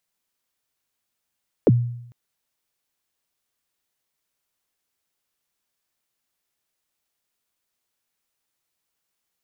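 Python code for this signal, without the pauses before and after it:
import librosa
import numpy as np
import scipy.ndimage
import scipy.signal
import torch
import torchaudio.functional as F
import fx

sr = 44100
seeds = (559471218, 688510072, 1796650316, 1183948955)

y = fx.drum_kick(sr, seeds[0], length_s=0.45, level_db=-9, start_hz=570.0, end_hz=120.0, sweep_ms=34.0, decay_s=0.75, click=False)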